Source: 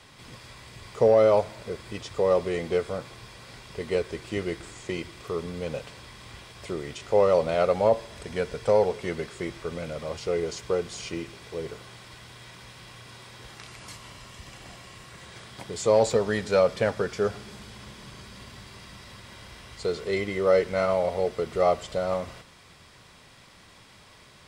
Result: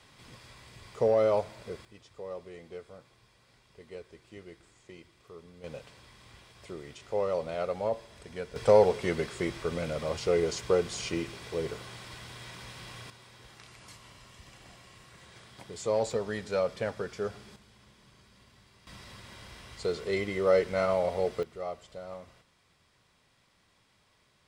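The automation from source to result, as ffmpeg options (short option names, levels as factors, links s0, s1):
-af "asetnsamples=n=441:p=0,asendcmd='1.85 volume volume -18dB;5.64 volume volume -9.5dB;8.56 volume volume 1dB;13.1 volume volume -8dB;17.56 volume volume -15dB;18.87 volume volume -3dB;21.43 volume volume -15dB',volume=0.501"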